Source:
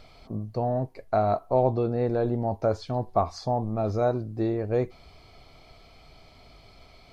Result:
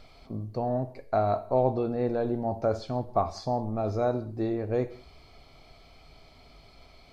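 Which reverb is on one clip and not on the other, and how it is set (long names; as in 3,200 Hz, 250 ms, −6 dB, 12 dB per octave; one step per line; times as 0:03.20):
reverb whose tail is shaped and stops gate 220 ms falling, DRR 11 dB
level −2 dB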